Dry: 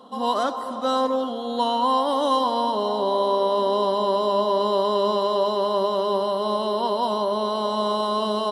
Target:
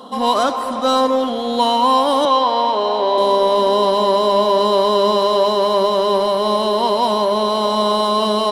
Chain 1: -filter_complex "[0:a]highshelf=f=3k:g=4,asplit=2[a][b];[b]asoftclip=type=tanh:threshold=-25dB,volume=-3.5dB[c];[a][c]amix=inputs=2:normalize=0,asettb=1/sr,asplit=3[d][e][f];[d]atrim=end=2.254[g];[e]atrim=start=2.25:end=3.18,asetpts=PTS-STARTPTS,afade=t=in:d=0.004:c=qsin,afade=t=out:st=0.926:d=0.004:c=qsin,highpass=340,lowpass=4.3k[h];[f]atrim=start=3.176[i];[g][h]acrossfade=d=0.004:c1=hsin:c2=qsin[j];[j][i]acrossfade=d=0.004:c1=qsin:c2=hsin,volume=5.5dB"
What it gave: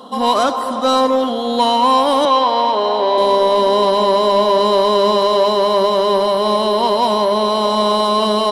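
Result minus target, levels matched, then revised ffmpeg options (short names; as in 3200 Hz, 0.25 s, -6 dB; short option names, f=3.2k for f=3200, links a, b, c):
soft clip: distortion -4 dB
-filter_complex "[0:a]highshelf=f=3k:g=4,asplit=2[a][b];[b]asoftclip=type=tanh:threshold=-35dB,volume=-3.5dB[c];[a][c]amix=inputs=2:normalize=0,asettb=1/sr,asplit=3[d][e][f];[d]atrim=end=2.254[g];[e]atrim=start=2.25:end=3.18,asetpts=PTS-STARTPTS,afade=t=in:d=0.004:c=qsin,afade=t=out:st=0.926:d=0.004:c=qsin,highpass=340,lowpass=4.3k[h];[f]atrim=start=3.176[i];[g][h]acrossfade=d=0.004:c1=hsin:c2=qsin[j];[j][i]acrossfade=d=0.004:c1=qsin:c2=hsin,volume=5.5dB"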